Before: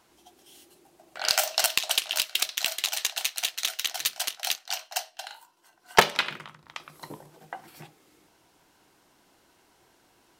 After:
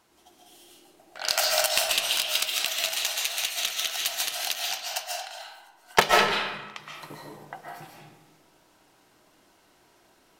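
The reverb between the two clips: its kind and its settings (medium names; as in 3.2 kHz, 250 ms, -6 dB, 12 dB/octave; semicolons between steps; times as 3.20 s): algorithmic reverb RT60 0.95 s, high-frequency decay 0.7×, pre-delay 100 ms, DRR -2 dB; trim -2 dB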